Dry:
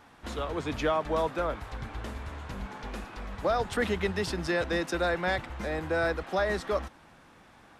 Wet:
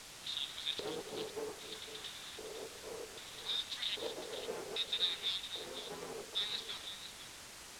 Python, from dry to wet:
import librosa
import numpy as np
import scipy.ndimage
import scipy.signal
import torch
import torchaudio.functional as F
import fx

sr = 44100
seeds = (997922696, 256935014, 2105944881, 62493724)

y = fx.spec_gate(x, sr, threshold_db=-15, keep='weak')
y = fx.filter_lfo_bandpass(y, sr, shape='square', hz=0.63, low_hz=440.0, high_hz=3700.0, q=7.8)
y = fx.quant_dither(y, sr, seeds[0], bits=10, dither='triangular')
y = scipy.signal.sosfilt(scipy.signal.butter(2, 8700.0, 'lowpass', fs=sr, output='sos'), y)
y = fx.low_shelf(y, sr, hz=180.0, db=3.5)
y = y + 10.0 ** (-11.0 / 20.0) * np.pad(y, (int(506 * sr / 1000.0), 0))[:len(y)]
y = fx.doppler_dist(y, sr, depth_ms=0.2)
y = y * 10.0 ** (12.0 / 20.0)